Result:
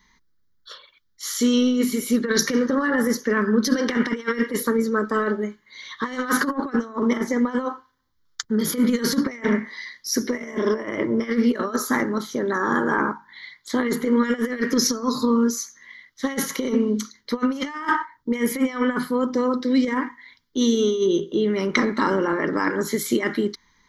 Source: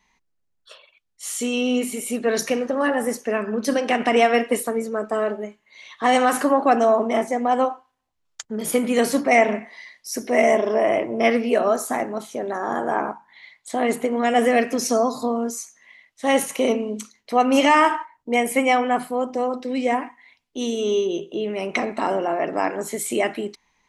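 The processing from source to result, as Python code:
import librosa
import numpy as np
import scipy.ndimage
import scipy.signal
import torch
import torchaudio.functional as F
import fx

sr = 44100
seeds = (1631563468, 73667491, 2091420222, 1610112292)

y = fx.over_compress(x, sr, threshold_db=-22.0, ratio=-0.5)
y = fx.fixed_phaser(y, sr, hz=2600.0, stages=6)
y = F.gain(torch.from_numpy(y), 6.0).numpy()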